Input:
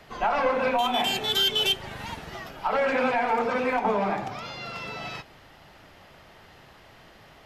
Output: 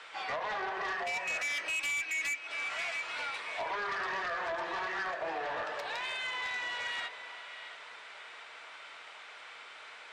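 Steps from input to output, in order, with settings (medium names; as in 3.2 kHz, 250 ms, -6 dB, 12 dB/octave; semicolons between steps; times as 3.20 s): differentiator; wide varispeed 0.737×; steep low-pass 7.8 kHz 36 dB/octave; three-band isolator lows -13 dB, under 440 Hz, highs -12 dB, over 3.3 kHz; band-stop 540 Hz, Q 12; echo whose repeats swap between lows and highs 338 ms, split 990 Hz, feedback 60%, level -13 dB; compression 3:1, threshold -49 dBFS, peak gain reduction 15 dB; Chebyshev shaper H 5 -7 dB, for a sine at -35 dBFS; trim +6.5 dB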